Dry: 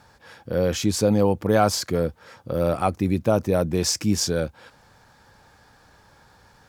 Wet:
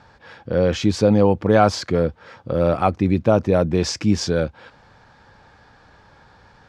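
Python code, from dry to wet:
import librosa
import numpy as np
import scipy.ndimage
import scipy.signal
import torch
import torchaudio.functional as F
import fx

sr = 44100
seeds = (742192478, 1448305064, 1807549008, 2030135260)

y = scipy.signal.sosfilt(scipy.signal.butter(2, 4100.0, 'lowpass', fs=sr, output='sos'), x)
y = y * 10.0 ** (4.0 / 20.0)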